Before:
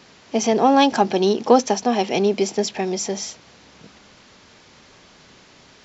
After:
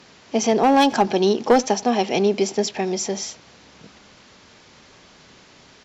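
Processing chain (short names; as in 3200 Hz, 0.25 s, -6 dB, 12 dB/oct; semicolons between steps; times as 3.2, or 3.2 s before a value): speakerphone echo 90 ms, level -23 dB; one-sided clip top -8 dBFS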